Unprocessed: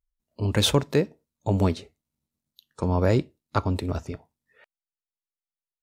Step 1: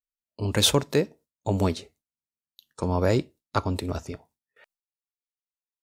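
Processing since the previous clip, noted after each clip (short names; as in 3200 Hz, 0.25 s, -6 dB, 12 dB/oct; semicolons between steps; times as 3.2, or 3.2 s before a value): gate with hold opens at -55 dBFS; tone controls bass -3 dB, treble +5 dB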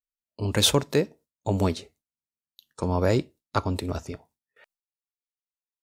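nothing audible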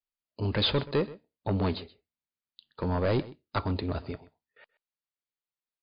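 soft clip -19.5 dBFS, distortion -10 dB; echo 0.128 s -19 dB; MP3 40 kbps 11025 Hz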